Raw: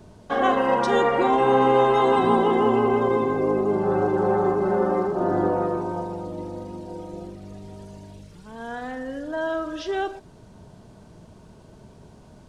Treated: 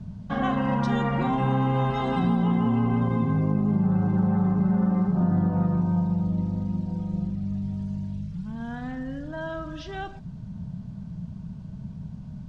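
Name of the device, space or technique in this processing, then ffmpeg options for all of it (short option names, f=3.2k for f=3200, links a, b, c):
jukebox: -filter_complex "[0:a]asettb=1/sr,asplit=3[a][b][c];[a]atrim=end=1.904[d];[b]atrim=start=1.9:end=2.43,asetpts=PTS-STARTPTS,afade=t=in:d=0.004:c=qsin,afade=t=out:st=0.526:d=0.004:c=qsin,equalizer=f=125:t=o:w=0.33:g=-9,equalizer=f=200:t=o:w=0.33:g=-5,equalizer=f=1k:t=o:w=0.33:g=-5,equalizer=f=5k:t=o:w=0.33:g=7[e];[c]atrim=start=2.426[f];[d][e]acrossfade=d=0.004:c1=hsin:c2=qsin[g];[g][f]acrossfade=d=0.004:c1=qsin:c2=hsin,lowpass=6k,lowshelf=f=260:t=q:w=3:g=13,acompressor=threshold=-14dB:ratio=5,volume=-5dB"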